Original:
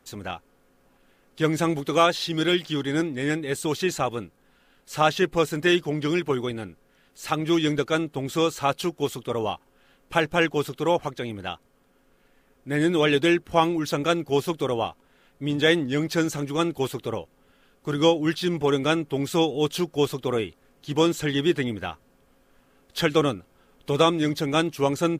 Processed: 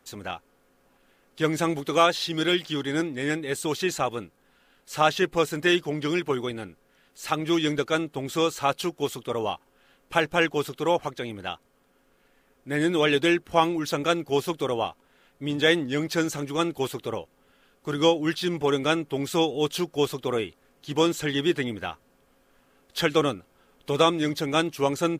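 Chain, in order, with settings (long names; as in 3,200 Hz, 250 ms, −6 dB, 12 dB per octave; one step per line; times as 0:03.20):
low-shelf EQ 260 Hz −5 dB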